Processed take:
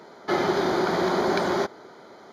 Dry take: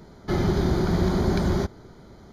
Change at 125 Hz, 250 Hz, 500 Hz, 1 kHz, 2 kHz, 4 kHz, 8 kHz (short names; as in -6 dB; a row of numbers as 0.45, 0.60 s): -13.0, -3.0, +3.5, +7.0, +7.0, +4.0, +1.5 dB